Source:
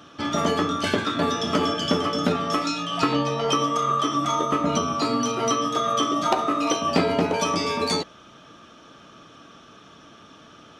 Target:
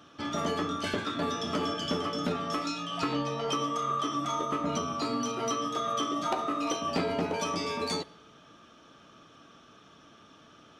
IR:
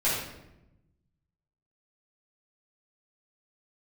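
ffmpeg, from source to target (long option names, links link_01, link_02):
-filter_complex "[0:a]asoftclip=type=tanh:threshold=-12dB,asplit=2[link_01][link_02];[1:a]atrim=start_sample=2205,asetrate=33516,aresample=44100[link_03];[link_02][link_03]afir=irnorm=-1:irlink=0,volume=-33.5dB[link_04];[link_01][link_04]amix=inputs=2:normalize=0,volume=-7.5dB"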